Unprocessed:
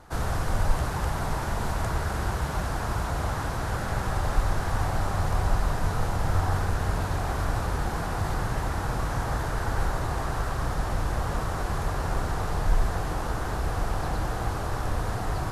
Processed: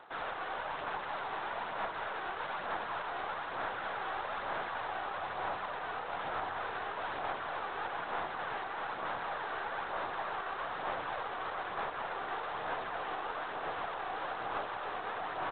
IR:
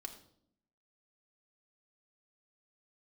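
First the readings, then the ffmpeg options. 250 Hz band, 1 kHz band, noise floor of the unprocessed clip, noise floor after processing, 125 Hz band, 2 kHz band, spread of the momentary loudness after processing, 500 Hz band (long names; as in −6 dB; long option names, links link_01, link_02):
−16.5 dB, −4.0 dB, −31 dBFS, −41 dBFS, −30.0 dB, −3.0 dB, 1 LU, −7.0 dB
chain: -filter_complex "[0:a]highpass=570,alimiter=level_in=3.5dB:limit=-24dB:level=0:latency=1:release=132,volume=-3.5dB,aphaser=in_gain=1:out_gain=1:delay=2.7:decay=0.33:speed=1.1:type=sinusoidal,aeval=exprs='0.0631*(cos(1*acos(clip(val(0)/0.0631,-1,1)))-cos(1*PI/2))+0.0112*(cos(2*acos(clip(val(0)/0.0631,-1,1)))-cos(2*PI/2))':channel_layout=same,asplit=2[link_01][link_02];[link_02]aecho=0:1:268:0.178[link_03];[link_01][link_03]amix=inputs=2:normalize=0,volume=-1.5dB" -ar 8000 -c:a adpcm_g726 -b:a 24k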